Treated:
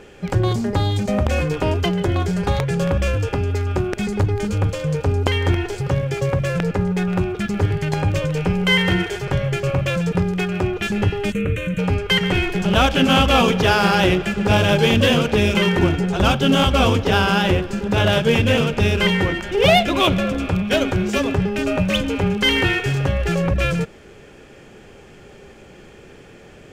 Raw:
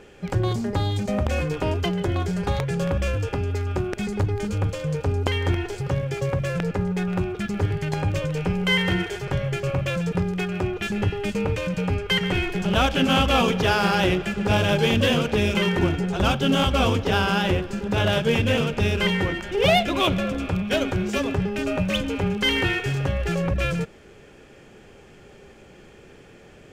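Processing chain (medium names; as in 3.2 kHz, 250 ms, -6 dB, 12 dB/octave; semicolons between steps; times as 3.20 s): 11.32–11.79 s: static phaser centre 2.1 kHz, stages 4; trim +4.5 dB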